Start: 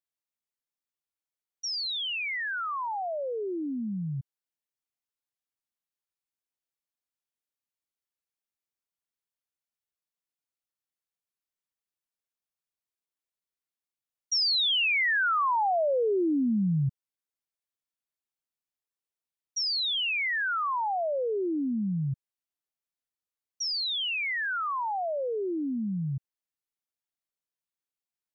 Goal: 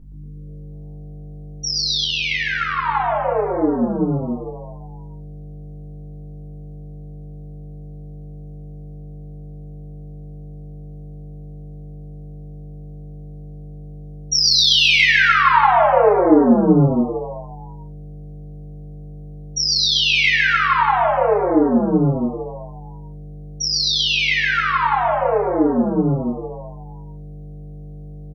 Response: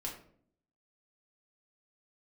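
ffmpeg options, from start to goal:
-filter_complex "[0:a]asettb=1/sr,asplit=3[a][b][c];[a]atrim=end=14.334[d];[b]atrim=start=14.33:end=14.87,asetpts=PTS-STARTPTS,afade=t=in:d=0.004:c=qsin,afade=t=out:st=0.536:d=0.004:c=qsin,aeval=exprs='sgn(val(0))*max(abs(val(0))-0.00126,0)':c=same[e];[c]atrim=start=14.866[f];[d][e]acrossfade=d=0.004:c1=hsin:c2=qsin[g];[g][f]acrossfade=d=0.004:c1=qsin:c2=hsin,asettb=1/sr,asplit=3[h][i][j];[h]atrim=end=20.084[k];[i]atrim=start=20.08:end=20.78,asetpts=PTS-STARTPTS,afade=t=in:d=0.004:c=qsin,afade=t=out:st=0.696:d=0.004:c=qsin,highshelf=f=4.6k:g=6.5[l];[j]atrim=start=20.776[m];[k][l]acrossfade=d=0.004:c1=hsin:c2=qsin[n];[n][m]acrossfade=d=0.004:c1=qsin:c2=hsin,aeval=exprs='val(0)+0.00355*(sin(2*PI*50*n/s)+sin(2*PI*2*50*n/s)/2+sin(2*PI*3*50*n/s)/3+sin(2*PI*4*50*n/s)/4+sin(2*PI*5*50*n/s)/5)':c=same,equalizer=f=120:t=o:w=0.32:g=-7,bandreject=f=94.1:t=h:w=4,bandreject=f=188.2:t=h:w=4,bandreject=f=282.3:t=h:w=4,bandreject=f=376.4:t=h:w=4,bandreject=f=470.5:t=h:w=4,bandreject=f=564.6:t=h:w=4,bandreject=f=658.7:t=h:w=4,bandreject=f=752.8:t=h:w=4,bandreject=f=846.9:t=h:w=4,bandreject=f=941:t=h:w=4,bandreject=f=1.0351k:t=h:w=4,bandreject=f=1.1292k:t=h:w=4,bandreject=f=1.2233k:t=h:w=4,bandreject=f=1.3174k:t=h:w=4,bandreject=f=1.4115k:t=h:w=4,bandreject=f=1.5056k:t=h:w=4,bandreject=f=1.5997k:t=h:w=4,bandreject=f=1.6938k:t=h:w=4,bandreject=f=1.7879k:t=h:w=4,bandreject=f=1.882k:t=h:w=4,bandreject=f=1.9761k:t=h:w=4,bandreject=f=2.0702k:t=h:w=4,bandreject=f=2.1643k:t=h:w=4,bandreject=f=2.2584k:t=h:w=4,bandreject=f=2.3525k:t=h:w=4,bandreject=f=2.4466k:t=h:w=4,bandreject=f=2.5407k:t=h:w=4,bandreject=f=2.6348k:t=h:w=4,bandreject=f=2.7289k:t=h:w=4,bandreject=f=2.823k:t=h:w=4,bandreject=f=2.9171k:t=h:w=4,bandreject=f=3.0112k:t=h:w=4,bandreject=f=3.1053k:t=h:w=4,bandreject=f=3.1994k:t=h:w=4,bandreject=f=3.2935k:t=h:w=4,bandreject=f=3.3876k:t=h:w=4,bandreject=f=3.4817k:t=h:w=4,bandreject=f=3.5758k:t=h:w=4,asplit=9[o][p][q][r][s][t][u][v][w];[p]adelay=117,afreqshift=100,volume=-3.5dB[x];[q]adelay=234,afreqshift=200,volume=-8.1dB[y];[r]adelay=351,afreqshift=300,volume=-12.7dB[z];[s]adelay=468,afreqshift=400,volume=-17.2dB[aa];[t]adelay=585,afreqshift=500,volume=-21.8dB[ab];[u]adelay=702,afreqshift=600,volume=-26.4dB[ac];[v]adelay=819,afreqshift=700,volume=-31dB[ad];[w]adelay=936,afreqshift=800,volume=-35.6dB[ae];[o][x][y][z][aa][ab][ac][ad][ae]amix=inputs=9:normalize=0[af];[1:a]atrim=start_sample=2205,afade=t=out:st=0.14:d=0.01,atrim=end_sample=6615[ag];[af][ag]afir=irnorm=-1:irlink=0,asplit=3[ah][ai][aj];[ah]afade=t=out:st=2.03:d=0.02[ak];[ai]tremolo=f=80:d=0.4,afade=t=in:st=2.03:d=0.02,afade=t=out:st=2.88:d=0.02[al];[aj]afade=t=in:st=2.88:d=0.02[am];[ak][al][am]amix=inputs=3:normalize=0,acontrast=45,volume=4.5dB"

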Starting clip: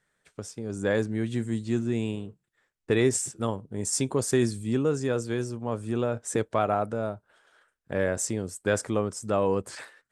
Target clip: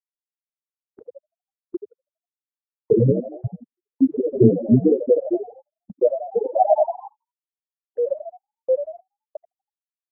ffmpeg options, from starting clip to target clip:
-filter_complex "[0:a]dynaudnorm=f=270:g=17:m=8dB,flanger=delay=16:depth=2.7:speed=0.6,acontrast=28,afftfilt=real='re*gte(hypot(re,im),1.12)':imag='im*gte(hypot(re,im),1.12)':win_size=1024:overlap=0.75,asplit=7[a][b][c][d][e][f][g];[b]adelay=82,afreqshift=59,volume=-9dB[h];[c]adelay=164,afreqshift=118,volume=-15dB[i];[d]adelay=246,afreqshift=177,volume=-21dB[j];[e]adelay=328,afreqshift=236,volume=-27.1dB[k];[f]adelay=410,afreqshift=295,volume=-33.1dB[l];[g]adelay=492,afreqshift=354,volume=-39.1dB[m];[a][h][i][j][k][l][m]amix=inputs=7:normalize=0,agate=range=-33dB:threshold=-41dB:ratio=16:detection=peak,afftfilt=real='re*(1-between(b*sr/1024,290*pow(1800/290,0.5+0.5*sin(2*PI*4.5*pts/sr))/1.41,290*pow(1800/290,0.5+0.5*sin(2*PI*4.5*pts/sr))*1.41))':imag='im*(1-between(b*sr/1024,290*pow(1800/290,0.5+0.5*sin(2*PI*4.5*pts/sr))/1.41,290*pow(1800/290,0.5+0.5*sin(2*PI*4.5*pts/sr))*1.41))':win_size=1024:overlap=0.75,volume=4.5dB"

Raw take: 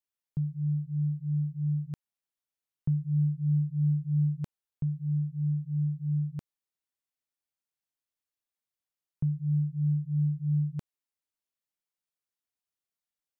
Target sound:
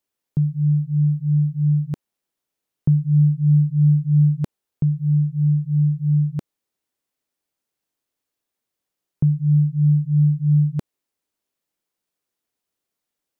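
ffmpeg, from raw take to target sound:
-af "equalizer=f=340:t=o:w=2:g=7.5,volume=8dB"

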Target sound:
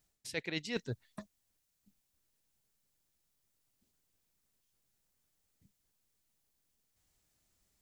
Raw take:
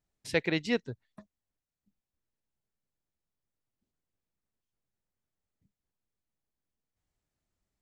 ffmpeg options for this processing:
-af "highshelf=f=3.1k:g=11,areverse,acompressor=threshold=-38dB:ratio=16,areverse,volume=4.5dB"

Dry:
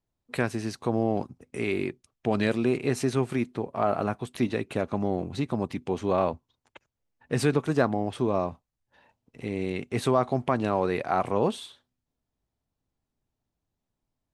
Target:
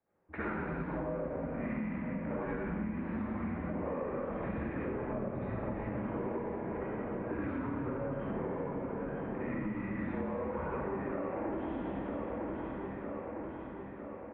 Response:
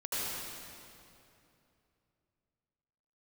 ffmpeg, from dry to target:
-filter_complex "[0:a]asplit=2[a][b];[b]highpass=f=720:p=1,volume=33dB,asoftclip=type=tanh:threshold=-8.5dB[c];[a][c]amix=inputs=2:normalize=0,lowpass=f=1k:p=1,volume=-6dB,aecho=1:1:955|1910|2865|3820|4775|5730:0.178|0.107|0.064|0.0384|0.023|0.0138[d];[1:a]atrim=start_sample=2205,asetrate=57330,aresample=44100[e];[d][e]afir=irnorm=-1:irlink=0,highpass=f=260:t=q:w=0.5412,highpass=f=260:t=q:w=1.307,lowpass=f=2.4k:t=q:w=0.5176,lowpass=f=2.4k:t=q:w=0.7071,lowpass=f=2.4k:t=q:w=1.932,afreqshift=-170,acompressor=threshold=-24dB:ratio=12,volume=-9dB"

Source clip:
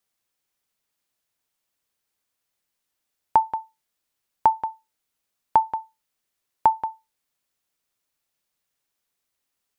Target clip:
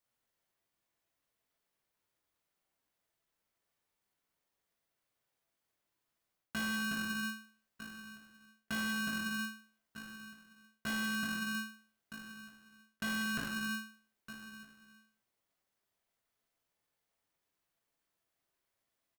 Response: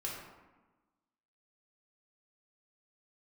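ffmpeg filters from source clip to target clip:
-filter_complex "[0:a]asplit=2[a][b];[b]adelay=641.4,volume=-29dB,highshelf=f=4k:g=-14.4[c];[a][c]amix=inputs=2:normalize=0,acrossover=split=140|480[d][e][f];[f]alimiter=limit=-18dB:level=0:latency=1:release=75[g];[d][e][g]amix=inputs=3:normalize=0,atempo=0.51,lowpass=f=1.3k:p=1,aemphasis=mode=production:type=50kf[h];[1:a]atrim=start_sample=2205,afade=t=out:st=0.38:d=0.01,atrim=end_sample=17199[i];[h][i]afir=irnorm=-1:irlink=0,asoftclip=type=hard:threshold=-24dB,areverse,acompressor=threshold=-36dB:ratio=5,areverse,aeval=exprs='val(0)*sgn(sin(2*PI*670*n/s))':c=same"

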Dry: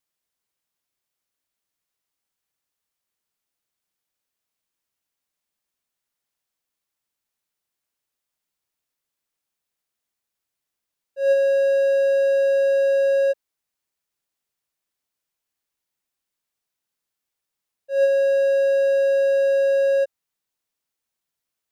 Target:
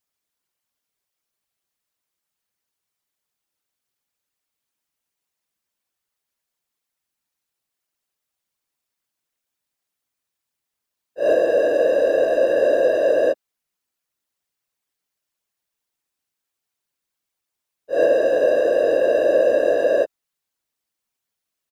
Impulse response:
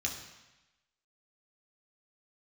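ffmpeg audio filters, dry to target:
-filter_complex "[0:a]asplit=2[a][b];[b]asetrate=29433,aresample=44100,atempo=1.49831,volume=-14dB[c];[a][c]amix=inputs=2:normalize=0,afftfilt=real='hypot(re,im)*cos(2*PI*random(0))':imag='hypot(re,im)*sin(2*PI*random(1))':win_size=512:overlap=0.75,volume=7dB"

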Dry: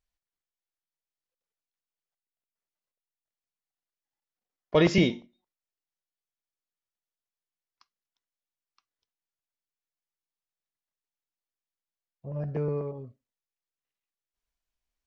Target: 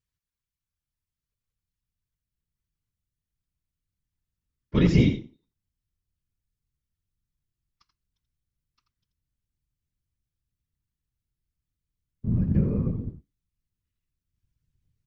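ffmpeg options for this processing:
-filter_complex "[0:a]asplit=2[a][b];[b]acompressor=threshold=-32dB:ratio=6,volume=-3dB[c];[a][c]amix=inputs=2:normalize=0,asuperstop=centerf=690:order=4:qfactor=1.5,asplit=2[d][e];[e]aecho=0:1:84:0.355[f];[d][f]amix=inputs=2:normalize=0,asubboost=boost=7:cutoff=200,afftfilt=real='hypot(re,im)*cos(2*PI*random(0))':imag='hypot(re,im)*sin(2*PI*random(1))':win_size=512:overlap=0.75"

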